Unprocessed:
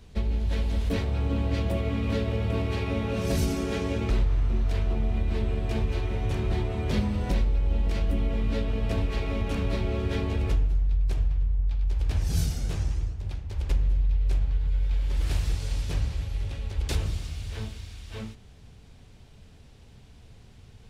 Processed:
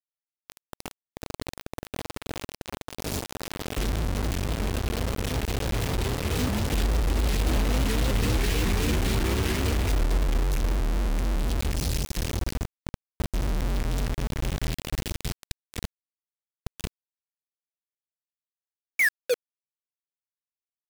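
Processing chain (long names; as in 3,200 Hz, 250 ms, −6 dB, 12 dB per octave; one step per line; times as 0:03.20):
source passing by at 0:08.53, 27 m/s, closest 14 metres
sound drawn into the spectrogram fall, 0:18.99–0:19.34, 440–2,500 Hz −23 dBFS
linear-phase brick-wall band-stop 520–1,600 Hz
in parallel at +0.5 dB: downward compressor 20 to 1, threshold −40 dBFS, peak gain reduction 19 dB
on the sum: brickwall limiter −25.5 dBFS, peak gain reduction 9.5 dB
on a send at −23 dB: convolution reverb, pre-delay 3 ms
on the sum: bit-depth reduction 6 bits, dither none
pitch modulation by a square or saw wave saw up 3.7 Hz, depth 250 cents
level +8 dB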